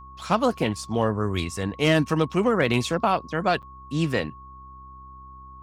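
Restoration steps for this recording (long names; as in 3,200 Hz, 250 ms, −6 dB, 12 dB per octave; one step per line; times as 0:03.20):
clipped peaks rebuilt −9 dBFS
hum removal 65 Hz, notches 6
notch filter 1,100 Hz, Q 30
repair the gap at 0:03.62, 7.8 ms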